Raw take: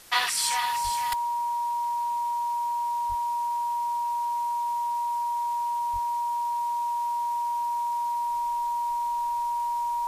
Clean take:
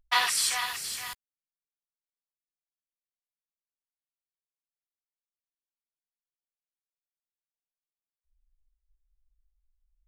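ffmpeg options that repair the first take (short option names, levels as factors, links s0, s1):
-filter_complex "[0:a]bandreject=f=950:w=30,asplit=3[s0][s1][s2];[s0]afade=t=out:st=0.83:d=0.02[s3];[s1]highpass=f=140:w=0.5412,highpass=f=140:w=1.3066,afade=t=in:st=0.83:d=0.02,afade=t=out:st=0.95:d=0.02[s4];[s2]afade=t=in:st=0.95:d=0.02[s5];[s3][s4][s5]amix=inputs=3:normalize=0,asplit=3[s6][s7][s8];[s6]afade=t=out:st=3.08:d=0.02[s9];[s7]highpass=f=140:w=0.5412,highpass=f=140:w=1.3066,afade=t=in:st=3.08:d=0.02,afade=t=out:st=3.2:d=0.02[s10];[s8]afade=t=in:st=3.2:d=0.02[s11];[s9][s10][s11]amix=inputs=3:normalize=0,asplit=3[s12][s13][s14];[s12]afade=t=out:st=5.92:d=0.02[s15];[s13]highpass=f=140:w=0.5412,highpass=f=140:w=1.3066,afade=t=in:st=5.92:d=0.02,afade=t=out:st=6.04:d=0.02[s16];[s14]afade=t=in:st=6.04:d=0.02[s17];[s15][s16][s17]amix=inputs=3:normalize=0,afwtdn=0.0035,asetnsamples=n=441:p=0,asendcmd='1.12 volume volume -11.5dB',volume=1"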